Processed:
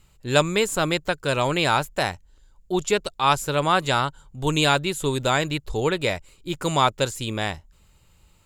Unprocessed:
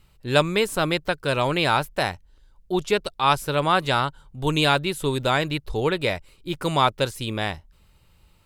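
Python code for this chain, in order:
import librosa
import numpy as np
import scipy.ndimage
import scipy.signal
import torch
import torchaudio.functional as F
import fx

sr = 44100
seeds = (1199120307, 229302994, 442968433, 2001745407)

y = fx.peak_eq(x, sr, hz=7100.0, db=13.5, octaves=0.21)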